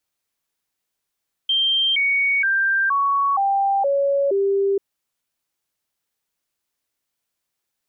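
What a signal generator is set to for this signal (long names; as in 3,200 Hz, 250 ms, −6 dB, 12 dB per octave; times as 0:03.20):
stepped sweep 3,160 Hz down, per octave 2, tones 7, 0.47 s, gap 0.00 s −16 dBFS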